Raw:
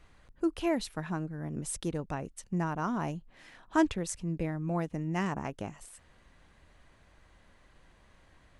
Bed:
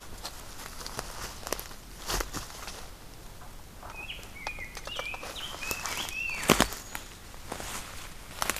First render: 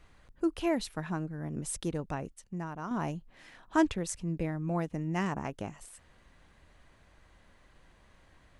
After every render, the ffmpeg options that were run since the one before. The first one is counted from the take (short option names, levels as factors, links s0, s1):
-filter_complex "[0:a]asplit=3[s0][s1][s2];[s0]atrim=end=2.342[s3];[s1]atrim=start=2.338:end=2.912,asetpts=PTS-STARTPTS,volume=0.473[s4];[s2]atrim=start=2.908[s5];[s3][s4]acrossfade=d=0.004:c1=hsin:c2=hsin[s6];[s6][s5]acrossfade=d=0.004:c1=hsin:c2=hsin"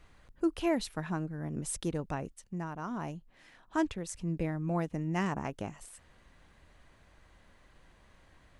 -filter_complex "[0:a]asplit=3[s0][s1][s2];[s0]atrim=end=2.912[s3];[s1]atrim=start=2.908:end=4.152,asetpts=PTS-STARTPTS,volume=0.596[s4];[s2]atrim=start=4.148[s5];[s3][s4]acrossfade=d=0.004:c1=hsin:c2=hsin[s6];[s6][s5]acrossfade=d=0.004:c1=hsin:c2=hsin"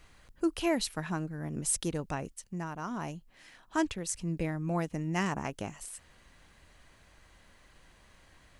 -af "highshelf=f=2400:g=8,bandreject=f=3600:w=27"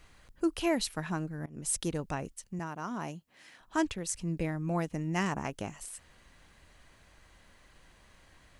-filter_complex "[0:a]asettb=1/sr,asplit=3[s0][s1][s2];[s0]atrim=end=2.594[s3];[s1]atrim=start=2.59:end=3.61,asetpts=PTS-STARTPTS,afade=t=in:d=0.004:c=qsin,afade=t=out:st=1.016:d=0.004:c=qsin,highpass=130[s4];[s2]atrim=start=3.606[s5];[s3][s4]acrossfade=d=0.004:c1=hsin:c2=qsin[s6];[s6][s5]acrossfade=d=0.004:c1=qsin:c2=hsin,asplit=2[s7][s8];[s7]atrim=end=1.46,asetpts=PTS-STARTPTS,afade=t=out:st=1.456:d=0.004:c=hsin:silence=0.0749894[s9];[s8]atrim=start=1.46,asetpts=PTS-STARTPTS,afade=t=in:d=0.43:c=qsin:silence=0.0749894[s10];[s9][s10]concat=n=2:v=0:a=1"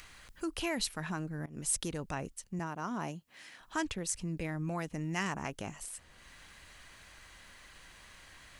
-filter_complex "[0:a]acrossover=split=1100[s0][s1];[s0]alimiter=level_in=1.88:limit=0.0631:level=0:latency=1:release=30,volume=0.531[s2];[s1]acompressor=mode=upward:threshold=0.00447:ratio=2.5[s3];[s2][s3]amix=inputs=2:normalize=0"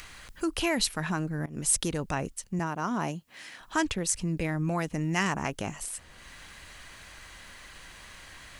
-af "volume=2.24"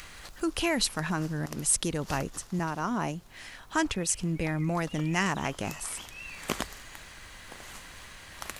-filter_complex "[1:a]volume=0.316[s0];[0:a][s0]amix=inputs=2:normalize=0"